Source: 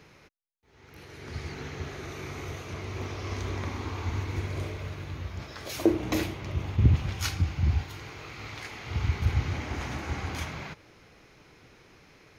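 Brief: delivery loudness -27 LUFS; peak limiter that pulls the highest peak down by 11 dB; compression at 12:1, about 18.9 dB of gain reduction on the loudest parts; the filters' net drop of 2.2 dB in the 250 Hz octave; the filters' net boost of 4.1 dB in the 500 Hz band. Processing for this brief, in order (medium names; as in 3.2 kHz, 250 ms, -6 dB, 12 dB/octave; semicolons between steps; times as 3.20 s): peaking EQ 250 Hz -8.5 dB; peaking EQ 500 Hz +9 dB; compression 12:1, threshold -35 dBFS; trim +14.5 dB; peak limiter -16.5 dBFS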